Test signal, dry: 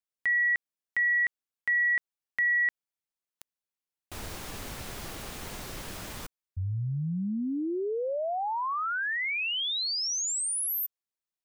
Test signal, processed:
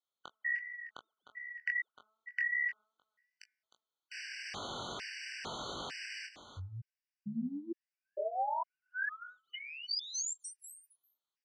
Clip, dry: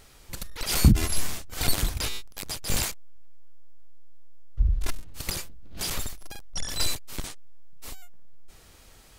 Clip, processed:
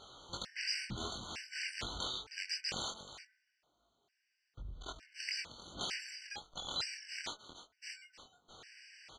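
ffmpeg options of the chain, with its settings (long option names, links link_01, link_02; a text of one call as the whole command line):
ffmpeg -i in.wav -filter_complex "[0:a]lowpass=frequency=5600:width=0.5412,lowpass=frequency=5600:width=1.3066,lowshelf=frequency=460:gain=-8.5,bandreject=frequency=217.3:width_type=h:width=4,bandreject=frequency=434.6:width_type=h:width=4,bandreject=frequency=651.9:width_type=h:width=4,bandreject=frequency=869.2:width_type=h:width=4,bandreject=frequency=1086.5:width_type=h:width=4,bandreject=frequency=1303.8:width_type=h:width=4,bandreject=frequency=1521.1:width_type=h:width=4,bandreject=frequency=1738.4:width_type=h:width=4,bandreject=frequency=1955.7:width_type=h:width=4,bandreject=frequency=2173:width_type=h:width=4,bandreject=frequency=2390.3:width_type=h:width=4,acompressor=threshold=-40dB:ratio=6:attack=32:release=106:knee=6:detection=rms,asplit=2[link_01][link_02];[link_02]adelay=17,volume=-14dB[link_03];[link_01][link_03]amix=inputs=2:normalize=0,aecho=1:1:309:0.237,flanger=delay=20:depth=4.7:speed=2.6,highpass=frequency=170:poles=1,afftfilt=real='re*gt(sin(2*PI*1.1*pts/sr)*(1-2*mod(floor(b*sr/1024/1500),2)),0)':imag='im*gt(sin(2*PI*1.1*pts/sr)*(1-2*mod(floor(b*sr/1024/1500),2)),0)':win_size=1024:overlap=0.75,volume=8.5dB" out.wav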